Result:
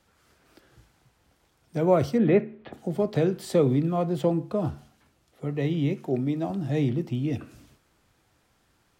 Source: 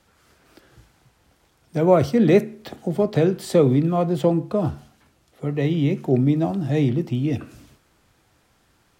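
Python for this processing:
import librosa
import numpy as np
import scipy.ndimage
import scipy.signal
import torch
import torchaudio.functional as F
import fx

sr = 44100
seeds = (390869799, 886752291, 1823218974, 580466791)

y = fx.lowpass(x, sr, hz=2900.0, slope=24, at=(2.17, 2.72), fade=0.02)
y = fx.low_shelf(y, sr, hz=190.0, db=-8.5, at=(5.93, 6.5))
y = F.gain(torch.from_numpy(y), -5.0).numpy()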